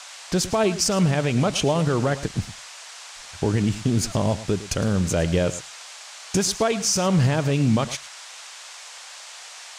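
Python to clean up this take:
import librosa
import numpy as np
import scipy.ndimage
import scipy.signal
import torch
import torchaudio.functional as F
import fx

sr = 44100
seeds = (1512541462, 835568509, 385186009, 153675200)

y = fx.noise_reduce(x, sr, print_start_s=2.62, print_end_s=3.12, reduce_db=27.0)
y = fx.fix_echo_inverse(y, sr, delay_ms=108, level_db=-15.5)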